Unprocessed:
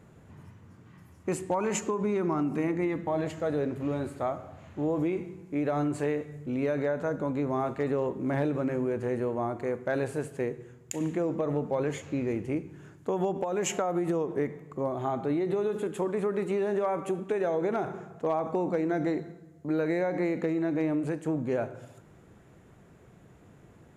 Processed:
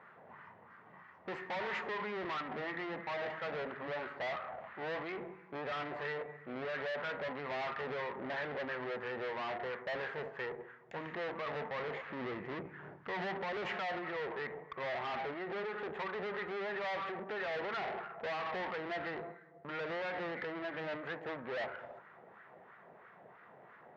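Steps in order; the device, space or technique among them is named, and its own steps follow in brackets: 12.10–13.78 s: bass shelf 360 Hz +11 dB; wah-wah guitar rig (wah-wah 3 Hz 680–1400 Hz, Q 2.2; valve stage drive 49 dB, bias 0.55; cabinet simulation 100–4200 Hz, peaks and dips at 110 Hz -4 dB, 300 Hz -8 dB, 1.9 kHz +8 dB); trim +12 dB

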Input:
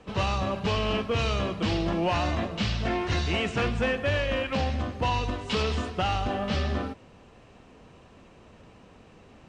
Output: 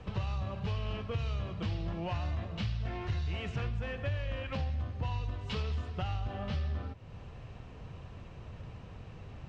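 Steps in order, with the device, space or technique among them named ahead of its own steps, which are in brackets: jukebox (low-pass 5.9 kHz 12 dB/octave; resonant low shelf 170 Hz +9.5 dB, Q 1.5; compression 3:1, threshold -37 dBFS, peak gain reduction 17 dB)

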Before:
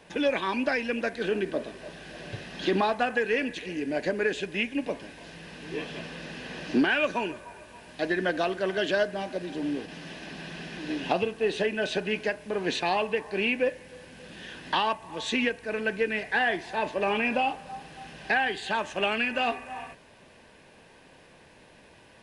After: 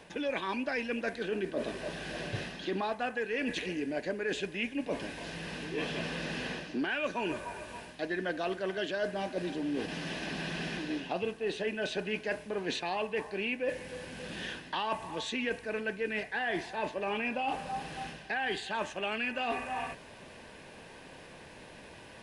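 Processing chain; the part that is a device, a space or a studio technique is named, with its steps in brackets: compression on the reversed sound (reverse; compression 6:1, threshold -35 dBFS, peak gain reduction 15.5 dB; reverse); trim +4 dB

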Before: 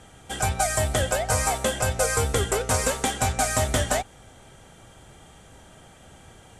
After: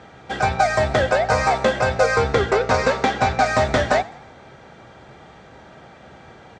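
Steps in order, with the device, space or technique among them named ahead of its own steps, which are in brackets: 2.16–3.46 s: low-pass 7.6 kHz 12 dB/octave; frequency-shifting delay pedal into a guitar cabinet (frequency-shifting echo 103 ms, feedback 49%, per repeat +53 Hz, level -22 dB; cabinet simulation 99–4500 Hz, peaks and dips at 100 Hz -8 dB, 170 Hz -3 dB, 270 Hz -3 dB, 3.1 kHz -10 dB); trim +8 dB

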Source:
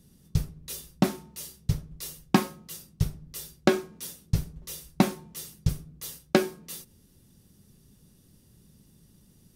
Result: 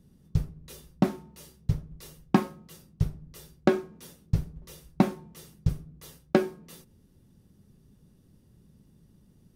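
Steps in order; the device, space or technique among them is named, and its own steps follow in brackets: through cloth (treble shelf 2.6 kHz -12.5 dB)

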